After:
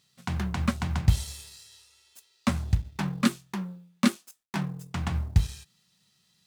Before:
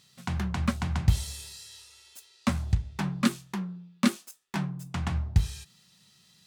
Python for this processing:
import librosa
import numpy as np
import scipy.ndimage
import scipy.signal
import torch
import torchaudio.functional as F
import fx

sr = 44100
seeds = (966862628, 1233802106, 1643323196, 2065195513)

y = fx.law_mismatch(x, sr, coded='A')
y = y * librosa.db_to_amplitude(1.5)